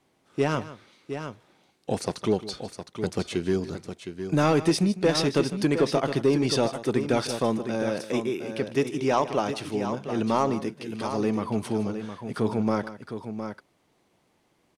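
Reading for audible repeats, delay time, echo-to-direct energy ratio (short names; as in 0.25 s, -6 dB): 2, 0.154 s, -8.0 dB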